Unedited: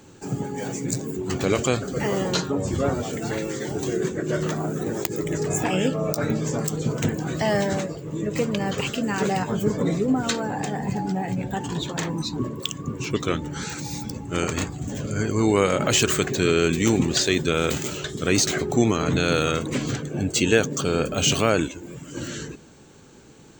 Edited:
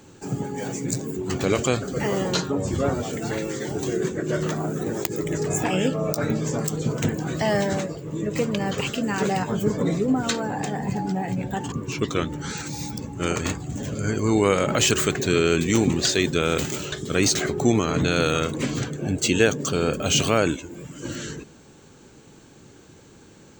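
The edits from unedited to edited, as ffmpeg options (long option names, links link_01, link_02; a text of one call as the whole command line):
ffmpeg -i in.wav -filter_complex "[0:a]asplit=2[link_01][link_02];[link_01]atrim=end=11.722[link_03];[link_02]atrim=start=12.838[link_04];[link_03][link_04]acrossfade=duration=0.004:curve1=hsin:curve2=hsin" out.wav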